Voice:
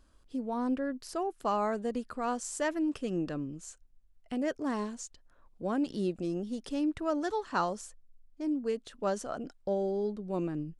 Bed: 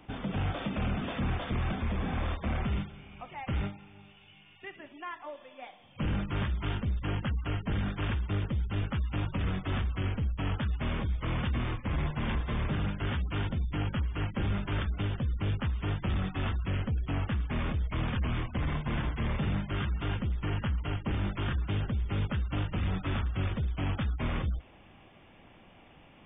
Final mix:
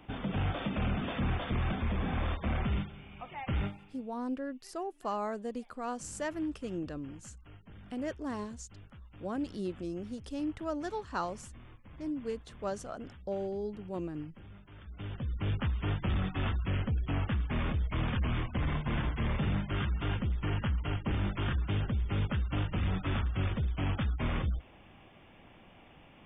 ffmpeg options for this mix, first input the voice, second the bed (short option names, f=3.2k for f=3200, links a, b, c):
-filter_complex "[0:a]adelay=3600,volume=-4.5dB[a];[1:a]volume=20dB,afade=t=out:st=3.68:d=0.45:silence=0.0944061,afade=t=in:st=14.81:d=0.78:silence=0.0944061[b];[a][b]amix=inputs=2:normalize=0"